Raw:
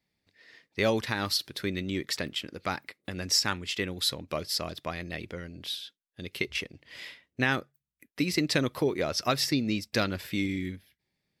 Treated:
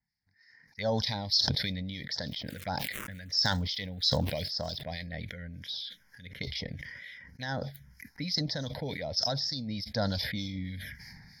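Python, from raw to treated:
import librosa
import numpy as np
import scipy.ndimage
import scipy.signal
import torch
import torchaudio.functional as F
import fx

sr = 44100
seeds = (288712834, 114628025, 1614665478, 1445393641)

y = fx.block_float(x, sr, bits=7)
y = scipy.signal.sosfilt(scipy.signal.butter(2, 9400.0, 'lowpass', fs=sr, output='sos'), y)
y = fx.peak_eq(y, sr, hz=5200.0, db=10.5, octaves=0.2)
y = fx.rider(y, sr, range_db=3, speed_s=0.5)
y = fx.fixed_phaser(y, sr, hz=1800.0, stages=8)
y = fx.dmg_crackle(y, sr, seeds[0], per_s=410.0, level_db=-48.0, at=(2.31, 4.8), fade=0.02)
y = fx.env_phaser(y, sr, low_hz=560.0, high_hz=2400.0, full_db=-26.0)
y = fx.harmonic_tremolo(y, sr, hz=3.3, depth_pct=70, crossover_hz=2000.0)
y = fx.sustainer(y, sr, db_per_s=28.0)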